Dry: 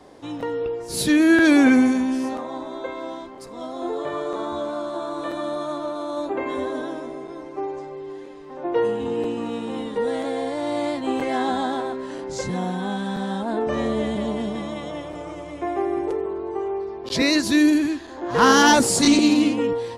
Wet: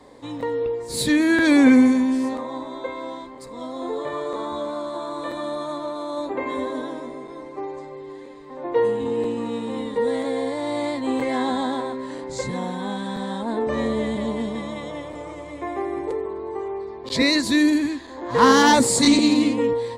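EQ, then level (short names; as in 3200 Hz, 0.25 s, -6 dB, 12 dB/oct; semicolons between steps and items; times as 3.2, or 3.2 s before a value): ripple EQ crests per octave 1, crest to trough 7 dB; -1.0 dB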